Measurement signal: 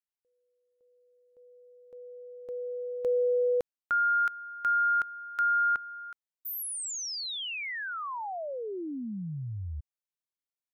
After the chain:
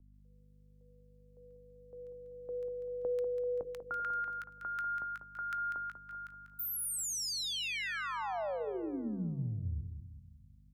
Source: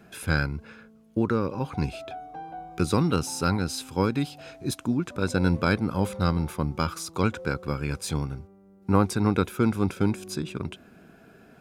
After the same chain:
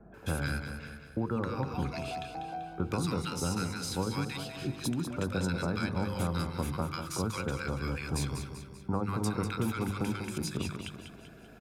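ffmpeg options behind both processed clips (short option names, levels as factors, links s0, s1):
-filter_complex "[0:a]bandreject=f=50:t=h:w=6,bandreject=f=100:t=h:w=6,bandreject=f=150:t=h:w=6,bandreject=f=200:t=h:w=6,bandreject=f=250:t=h:w=6,bandreject=f=300:t=h:w=6,bandreject=f=350:t=h:w=6,bandreject=f=400:t=h:w=6,bandreject=f=450:t=h:w=6,bandreject=f=500:t=h:w=6,aeval=exprs='val(0)+0.00112*(sin(2*PI*50*n/s)+sin(2*PI*2*50*n/s)/2+sin(2*PI*3*50*n/s)/3+sin(2*PI*4*50*n/s)/4+sin(2*PI*5*50*n/s)/5)':c=same,acrossover=split=1200[s0][s1];[s1]adelay=140[s2];[s0][s2]amix=inputs=2:normalize=0,acrossover=split=190|620[s3][s4][s5];[s3]acompressor=threshold=0.0224:ratio=4[s6];[s4]acompressor=threshold=0.0126:ratio=4[s7];[s5]acompressor=threshold=0.0158:ratio=4[s8];[s6][s7][s8]amix=inputs=3:normalize=0,asplit=2[s9][s10];[s10]aecho=0:1:194|388|582|776|970|1164:0.398|0.191|0.0917|0.044|0.0211|0.0101[s11];[s9][s11]amix=inputs=2:normalize=0"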